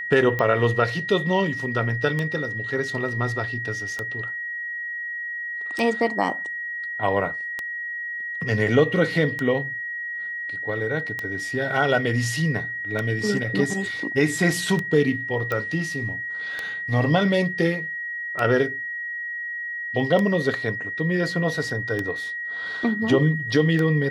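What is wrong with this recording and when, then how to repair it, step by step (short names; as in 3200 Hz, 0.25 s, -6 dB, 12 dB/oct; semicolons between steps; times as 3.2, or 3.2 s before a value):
tick 33 1/3 rpm -13 dBFS
tone 1900 Hz -28 dBFS
15.52 pop -14 dBFS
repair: de-click; notch 1900 Hz, Q 30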